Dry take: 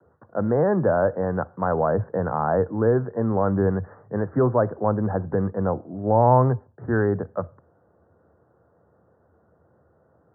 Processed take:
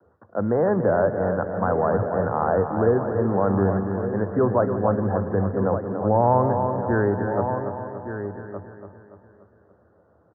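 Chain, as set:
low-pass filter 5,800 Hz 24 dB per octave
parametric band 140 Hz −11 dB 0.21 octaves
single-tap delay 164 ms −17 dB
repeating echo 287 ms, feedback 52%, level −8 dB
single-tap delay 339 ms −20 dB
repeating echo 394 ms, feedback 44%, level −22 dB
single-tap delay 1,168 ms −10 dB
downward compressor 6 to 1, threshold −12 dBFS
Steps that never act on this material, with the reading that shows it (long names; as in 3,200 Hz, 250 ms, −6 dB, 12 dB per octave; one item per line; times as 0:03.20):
low-pass filter 5,800 Hz: nothing at its input above 1,700 Hz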